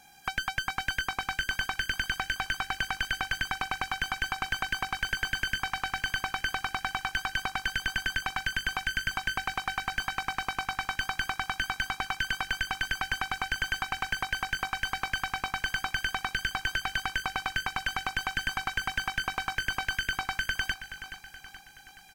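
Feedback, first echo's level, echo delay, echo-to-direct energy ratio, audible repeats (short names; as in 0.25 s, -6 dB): 51%, -12.0 dB, 0.425 s, -10.5 dB, 4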